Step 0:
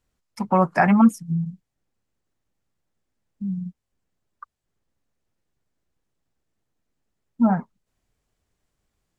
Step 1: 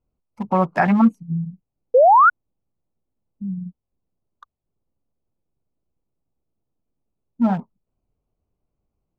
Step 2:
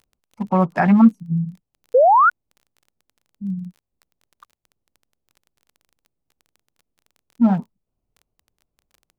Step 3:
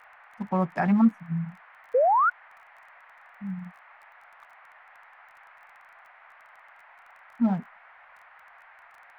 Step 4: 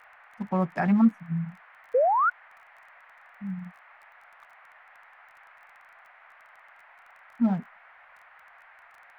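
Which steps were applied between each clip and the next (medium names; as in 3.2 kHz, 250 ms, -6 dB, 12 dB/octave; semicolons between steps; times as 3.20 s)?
local Wiener filter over 25 samples; painted sound rise, 1.94–2.30 s, 470–1500 Hz -11 dBFS
dynamic bell 200 Hz, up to +5 dB, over -28 dBFS, Q 0.86; crackle 19 per s -37 dBFS; trim -1.5 dB
band noise 680–2100 Hz -45 dBFS; trim -8 dB
peaking EQ 920 Hz -2.5 dB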